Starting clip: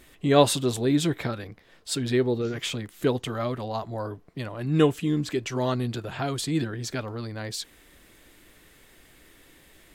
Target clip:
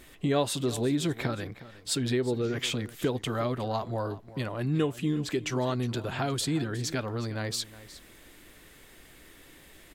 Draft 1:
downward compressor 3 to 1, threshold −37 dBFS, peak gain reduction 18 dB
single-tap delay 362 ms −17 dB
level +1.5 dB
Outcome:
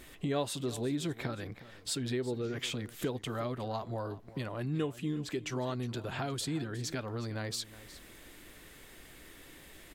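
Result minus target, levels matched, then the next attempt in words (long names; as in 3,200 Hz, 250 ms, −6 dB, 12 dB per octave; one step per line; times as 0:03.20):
downward compressor: peak gain reduction +6.5 dB
downward compressor 3 to 1, threshold −27.5 dBFS, peak gain reduction 11.5 dB
single-tap delay 362 ms −17 dB
level +1.5 dB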